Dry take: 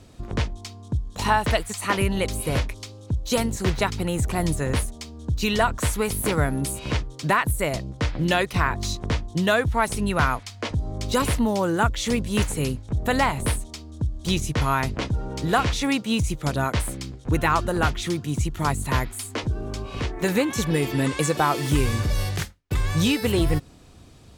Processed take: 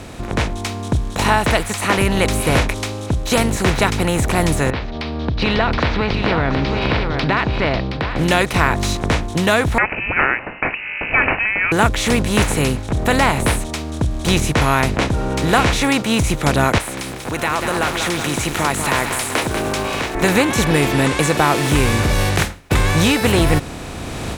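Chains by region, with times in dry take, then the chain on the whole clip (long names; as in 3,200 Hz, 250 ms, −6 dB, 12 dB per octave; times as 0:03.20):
0:04.70–0:08.16: Butterworth low-pass 4,800 Hz 72 dB per octave + downward compressor 3 to 1, threshold −36 dBFS + single-tap delay 721 ms −9 dB
0:09.78–0:11.72: high-pass filter 280 Hz + voice inversion scrambler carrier 2,800 Hz
0:16.78–0:20.15: high-pass filter 640 Hz 6 dB per octave + downward compressor 2 to 1, threshold −42 dBFS + feedback echo at a low word length 191 ms, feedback 55%, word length 8 bits, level −9 dB
whole clip: compressor on every frequency bin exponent 0.6; automatic gain control; level −1 dB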